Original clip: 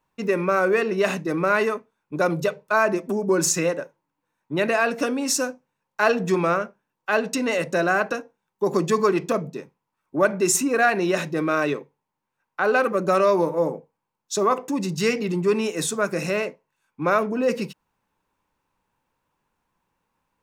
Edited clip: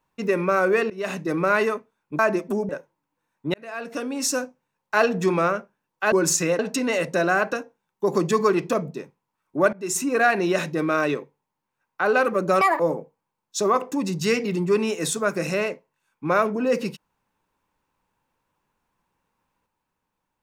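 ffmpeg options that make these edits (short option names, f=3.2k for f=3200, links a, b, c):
-filter_complex "[0:a]asplit=10[a][b][c][d][e][f][g][h][i][j];[a]atrim=end=0.9,asetpts=PTS-STARTPTS,afade=t=out:st=0.896:d=0.004:c=hsin:silence=0.105925[k];[b]atrim=start=0.9:end=2.192,asetpts=PTS-STARTPTS,afade=t=in:d=0.37:silence=0.105925[l];[c]atrim=start=2.778:end=3.282[m];[d]atrim=start=3.748:end=4.6,asetpts=PTS-STARTPTS,afade=t=out:st=0.848:d=0.004:c=hsin[n];[e]atrim=start=4.6:end=7.182,asetpts=PTS-STARTPTS,afade=t=in:d=0.87[o];[f]atrim=start=3.278:end=3.752[p];[g]atrim=start=7.178:end=10.32,asetpts=PTS-STARTPTS,afade=t=out:st=3.138:d=0.004:c=hsin:silence=0.1[q];[h]atrim=start=10.32:end=13.204,asetpts=PTS-STARTPTS,afade=t=in:d=0.43:silence=0.1[r];[i]atrim=start=13.2:end=13.56,asetpts=PTS-STARTPTS,asetrate=85113,aresample=44100[s];[j]atrim=start=13.556[t];[k][l]concat=n=2:v=0:a=1[u];[u][m]acrossfade=d=0.004:c1=hsin:c2=hsin[v];[n][o]concat=n=2:v=0:a=1[w];[v][w]acrossfade=d=0.004:c1=hsin:c2=hsin[x];[x][p]acrossfade=d=0.004:c1=hsin:c2=hsin[y];[q][r]concat=n=2:v=0:a=1[z];[y][z]acrossfade=d=0.004:c1=hsin:c2=hsin[aa];[aa][s]acrossfade=d=0.004:c1=hsin:c2=hsin[ab];[ab][t]acrossfade=d=0.004:c1=hsin:c2=hsin"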